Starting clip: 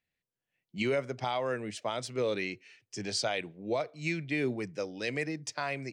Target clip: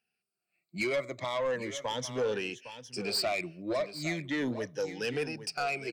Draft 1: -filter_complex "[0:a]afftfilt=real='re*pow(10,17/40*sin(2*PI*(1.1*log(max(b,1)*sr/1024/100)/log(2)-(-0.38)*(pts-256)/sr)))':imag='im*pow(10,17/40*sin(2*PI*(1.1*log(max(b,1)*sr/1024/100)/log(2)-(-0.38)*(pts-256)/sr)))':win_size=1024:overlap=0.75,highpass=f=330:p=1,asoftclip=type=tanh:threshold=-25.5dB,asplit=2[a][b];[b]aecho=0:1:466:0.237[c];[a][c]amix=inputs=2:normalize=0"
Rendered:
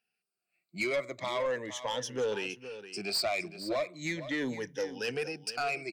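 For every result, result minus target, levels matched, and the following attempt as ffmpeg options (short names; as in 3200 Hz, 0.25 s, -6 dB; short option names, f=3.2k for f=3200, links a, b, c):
echo 0.343 s early; 125 Hz band -3.5 dB
-filter_complex "[0:a]afftfilt=real='re*pow(10,17/40*sin(2*PI*(1.1*log(max(b,1)*sr/1024/100)/log(2)-(-0.38)*(pts-256)/sr)))':imag='im*pow(10,17/40*sin(2*PI*(1.1*log(max(b,1)*sr/1024/100)/log(2)-(-0.38)*(pts-256)/sr)))':win_size=1024:overlap=0.75,highpass=f=330:p=1,asoftclip=type=tanh:threshold=-25.5dB,asplit=2[a][b];[b]aecho=0:1:809:0.237[c];[a][c]amix=inputs=2:normalize=0"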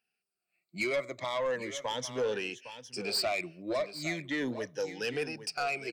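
125 Hz band -3.5 dB
-filter_complex "[0:a]afftfilt=real='re*pow(10,17/40*sin(2*PI*(1.1*log(max(b,1)*sr/1024/100)/log(2)-(-0.38)*(pts-256)/sr)))':imag='im*pow(10,17/40*sin(2*PI*(1.1*log(max(b,1)*sr/1024/100)/log(2)-(-0.38)*(pts-256)/sr)))':win_size=1024:overlap=0.75,highpass=f=160:p=1,asoftclip=type=tanh:threshold=-25.5dB,asplit=2[a][b];[b]aecho=0:1:809:0.237[c];[a][c]amix=inputs=2:normalize=0"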